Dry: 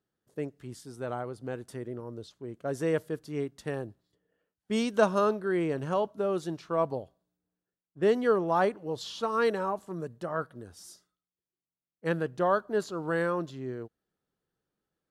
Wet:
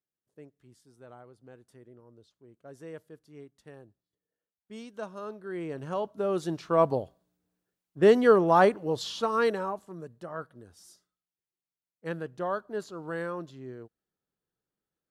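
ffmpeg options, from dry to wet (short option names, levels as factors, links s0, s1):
-af "volume=1.88,afade=t=in:st=5.2:d=0.82:silence=0.251189,afade=t=in:st=6.02:d=0.84:silence=0.375837,afade=t=out:st=8.77:d=1.15:silence=0.281838"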